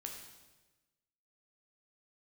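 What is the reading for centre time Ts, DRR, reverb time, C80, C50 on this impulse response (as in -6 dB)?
40 ms, 1.0 dB, 1.2 s, 6.5 dB, 4.5 dB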